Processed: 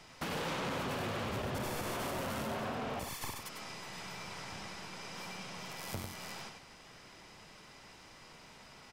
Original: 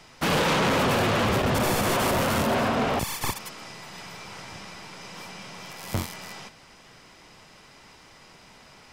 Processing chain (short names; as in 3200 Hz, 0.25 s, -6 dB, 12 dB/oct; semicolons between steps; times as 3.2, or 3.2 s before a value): compressor 6:1, threshold -33 dBFS, peak gain reduction 10.5 dB; on a send: echo 98 ms -6 dB; on the sum: gain -5 dB